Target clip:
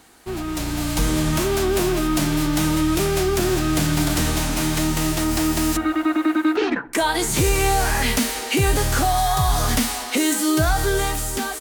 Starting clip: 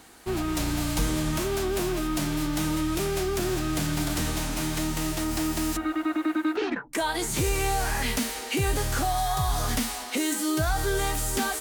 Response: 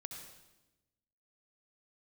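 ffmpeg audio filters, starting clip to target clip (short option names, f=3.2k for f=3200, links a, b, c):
-filter_complex "[0:a]asplit=2[a][b];[b]adelay=64,lowpass=f=2.2k:p=1,volume=-20dB,asplit=2[c][d];[d]adelay=64,lowpass=f=2.2k:p=1,volume=0.55,asplit=2[e][f];[f]adelay=64,lowpass=f=2.2k:p=1,volume=0.55,asplit=2[g][h];[h]adelay=64,lowpass=f=2.2k:p=1,volume=0.55[i];[a][c][e][g][i]amix=inputs=5:normalize=0,dynaudnorm=f=140:g=13:m=7dB"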